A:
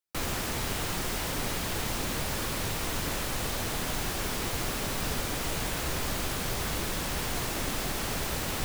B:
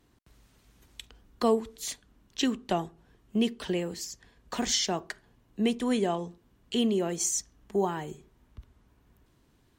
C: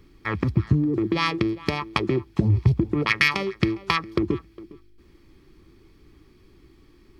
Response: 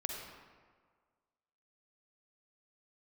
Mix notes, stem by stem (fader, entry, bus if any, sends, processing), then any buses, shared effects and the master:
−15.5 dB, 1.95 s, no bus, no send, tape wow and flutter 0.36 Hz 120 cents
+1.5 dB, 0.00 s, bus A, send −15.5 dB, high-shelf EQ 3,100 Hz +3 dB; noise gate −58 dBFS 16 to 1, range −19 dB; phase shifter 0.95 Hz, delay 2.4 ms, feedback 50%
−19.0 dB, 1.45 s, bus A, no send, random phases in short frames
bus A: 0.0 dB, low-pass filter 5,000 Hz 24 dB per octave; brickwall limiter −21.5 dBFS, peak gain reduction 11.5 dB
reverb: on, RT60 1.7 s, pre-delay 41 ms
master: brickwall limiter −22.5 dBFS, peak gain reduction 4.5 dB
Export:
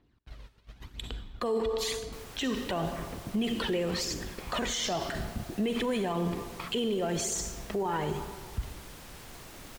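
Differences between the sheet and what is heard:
stem B +1.5 dB → +11.5 dB
stem C: entry 1.45 s → 2.70 s

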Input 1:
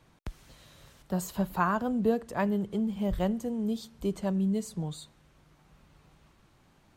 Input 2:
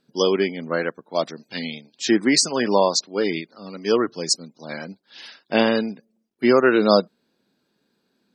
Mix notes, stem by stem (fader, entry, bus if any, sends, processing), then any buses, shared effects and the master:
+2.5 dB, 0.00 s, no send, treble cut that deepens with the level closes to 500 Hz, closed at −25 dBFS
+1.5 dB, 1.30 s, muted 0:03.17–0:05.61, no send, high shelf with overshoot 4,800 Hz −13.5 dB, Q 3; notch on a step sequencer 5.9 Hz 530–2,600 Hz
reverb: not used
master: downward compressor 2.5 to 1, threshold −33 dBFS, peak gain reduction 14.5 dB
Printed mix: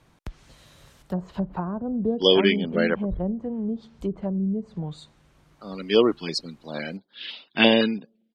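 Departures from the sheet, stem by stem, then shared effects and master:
stem 2: entry 1.30 s → 2.05 s
master: missing downward compressor 2.5 to 1, threshold −33 dBFS, peak gain reduction 14.5 dB

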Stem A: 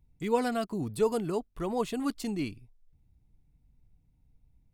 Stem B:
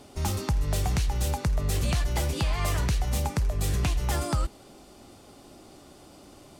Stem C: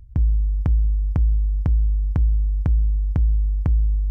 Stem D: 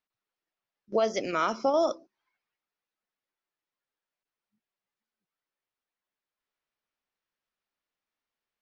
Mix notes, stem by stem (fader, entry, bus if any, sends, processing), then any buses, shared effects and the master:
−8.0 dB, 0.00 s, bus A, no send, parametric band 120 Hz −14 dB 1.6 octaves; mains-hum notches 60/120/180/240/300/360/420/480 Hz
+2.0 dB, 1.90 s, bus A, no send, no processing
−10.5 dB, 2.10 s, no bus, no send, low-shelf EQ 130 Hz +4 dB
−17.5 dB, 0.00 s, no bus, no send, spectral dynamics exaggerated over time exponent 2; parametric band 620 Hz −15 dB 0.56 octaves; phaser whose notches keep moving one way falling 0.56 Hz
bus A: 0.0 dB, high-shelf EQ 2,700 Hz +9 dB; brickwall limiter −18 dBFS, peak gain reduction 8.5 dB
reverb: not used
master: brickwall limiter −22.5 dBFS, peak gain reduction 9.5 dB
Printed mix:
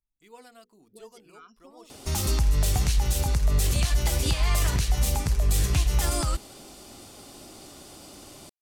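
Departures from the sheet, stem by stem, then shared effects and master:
stem A −8.0 dB → −20.0 dB
master: missing brickwall limiter −22.5 dBFS, peak gain reduction 9.5 dB

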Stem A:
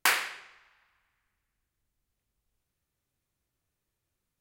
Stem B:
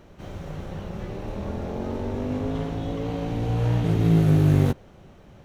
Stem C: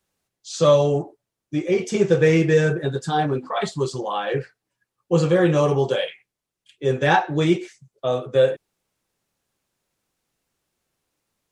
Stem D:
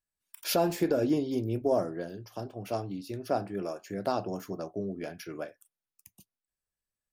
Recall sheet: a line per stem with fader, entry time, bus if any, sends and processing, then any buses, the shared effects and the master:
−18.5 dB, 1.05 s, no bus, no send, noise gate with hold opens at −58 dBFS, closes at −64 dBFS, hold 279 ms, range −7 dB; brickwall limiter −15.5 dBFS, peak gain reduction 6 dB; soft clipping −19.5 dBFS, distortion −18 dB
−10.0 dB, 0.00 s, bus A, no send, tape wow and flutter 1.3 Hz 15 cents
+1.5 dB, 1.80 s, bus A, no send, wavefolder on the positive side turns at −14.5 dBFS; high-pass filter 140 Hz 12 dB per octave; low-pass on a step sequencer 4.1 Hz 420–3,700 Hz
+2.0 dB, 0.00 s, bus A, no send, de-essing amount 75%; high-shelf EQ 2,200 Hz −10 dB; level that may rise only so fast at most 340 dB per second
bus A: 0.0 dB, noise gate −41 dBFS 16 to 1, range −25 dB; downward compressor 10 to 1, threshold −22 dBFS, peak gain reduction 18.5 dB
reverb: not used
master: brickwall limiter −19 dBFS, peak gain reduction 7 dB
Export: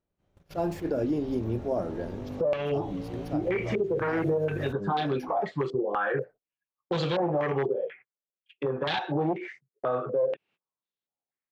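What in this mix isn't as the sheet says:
stem A: muted
stem B: missing tape wow and flutter 1.3 Hz 15 cents

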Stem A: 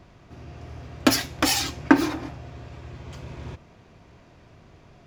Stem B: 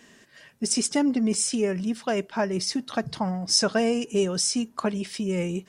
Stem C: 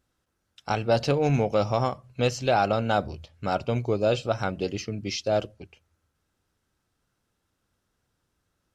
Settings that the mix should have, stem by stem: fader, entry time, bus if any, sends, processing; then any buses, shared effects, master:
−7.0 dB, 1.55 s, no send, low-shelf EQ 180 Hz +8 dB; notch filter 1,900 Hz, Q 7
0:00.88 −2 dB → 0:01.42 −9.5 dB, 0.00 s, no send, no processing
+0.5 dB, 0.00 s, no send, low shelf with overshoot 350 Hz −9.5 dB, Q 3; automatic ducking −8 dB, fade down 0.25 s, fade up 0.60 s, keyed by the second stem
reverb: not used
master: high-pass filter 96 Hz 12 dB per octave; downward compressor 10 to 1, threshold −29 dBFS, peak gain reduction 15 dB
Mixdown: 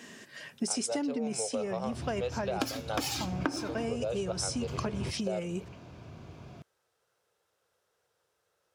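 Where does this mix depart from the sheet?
stem A −7.0 dB → +1.5 dB
stem B −2.0 dB → +4.5 dB

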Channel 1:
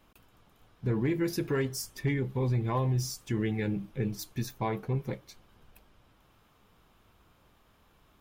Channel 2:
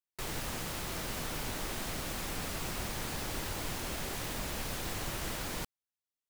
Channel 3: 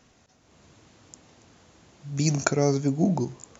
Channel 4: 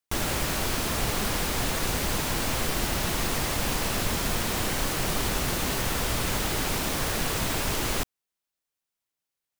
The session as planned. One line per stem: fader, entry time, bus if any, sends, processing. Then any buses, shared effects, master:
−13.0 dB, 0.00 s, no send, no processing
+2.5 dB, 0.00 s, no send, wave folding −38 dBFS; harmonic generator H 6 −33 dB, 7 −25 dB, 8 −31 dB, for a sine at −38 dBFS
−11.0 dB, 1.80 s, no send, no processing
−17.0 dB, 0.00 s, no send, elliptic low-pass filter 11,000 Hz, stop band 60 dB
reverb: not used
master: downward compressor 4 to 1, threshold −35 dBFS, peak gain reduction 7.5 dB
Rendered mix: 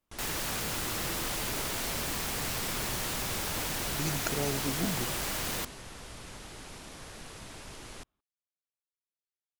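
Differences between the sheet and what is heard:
stem 1 −13.0 dB → −21.0 dB
stem 2 +2.5 dB → +9.0 dB
master: missing downward compressor 4 to 1, threshold −35 dBFS, peak gain reduction 7.5 dB

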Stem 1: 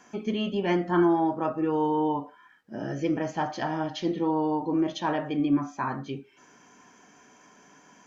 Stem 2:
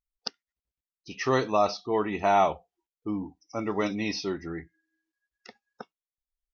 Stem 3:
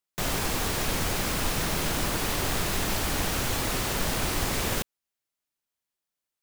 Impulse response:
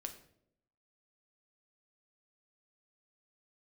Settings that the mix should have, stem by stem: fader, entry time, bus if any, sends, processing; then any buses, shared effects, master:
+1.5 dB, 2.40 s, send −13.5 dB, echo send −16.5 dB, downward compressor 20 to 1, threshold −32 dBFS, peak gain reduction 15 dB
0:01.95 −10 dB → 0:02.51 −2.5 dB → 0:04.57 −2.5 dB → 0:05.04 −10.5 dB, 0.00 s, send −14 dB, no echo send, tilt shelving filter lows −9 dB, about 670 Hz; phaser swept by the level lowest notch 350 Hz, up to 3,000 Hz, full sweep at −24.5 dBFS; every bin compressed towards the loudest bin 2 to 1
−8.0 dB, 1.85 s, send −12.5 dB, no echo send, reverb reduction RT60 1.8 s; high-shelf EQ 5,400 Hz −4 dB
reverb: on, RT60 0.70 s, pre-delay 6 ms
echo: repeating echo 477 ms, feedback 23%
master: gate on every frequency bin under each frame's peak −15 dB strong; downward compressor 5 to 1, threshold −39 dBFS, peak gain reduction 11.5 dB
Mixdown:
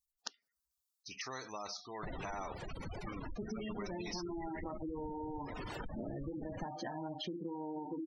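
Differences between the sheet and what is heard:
stem 1: entry 2.40 s → 3.25 s
reverb return −9.5 dB

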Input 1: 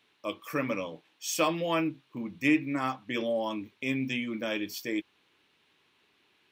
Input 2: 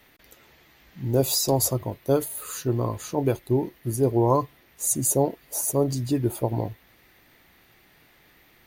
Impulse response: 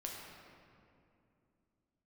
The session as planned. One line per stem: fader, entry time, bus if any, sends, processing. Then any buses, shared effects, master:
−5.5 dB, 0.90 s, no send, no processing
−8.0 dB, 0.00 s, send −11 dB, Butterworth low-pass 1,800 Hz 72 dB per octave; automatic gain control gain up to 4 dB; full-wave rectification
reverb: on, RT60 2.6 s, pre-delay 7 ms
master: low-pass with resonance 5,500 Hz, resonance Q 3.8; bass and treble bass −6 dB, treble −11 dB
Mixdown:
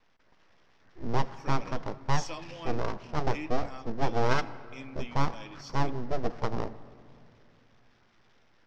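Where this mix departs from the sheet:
stem 1 −5.5 dB → −15.5 dB
master: missing bass and treble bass −6 dB, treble −11 dB

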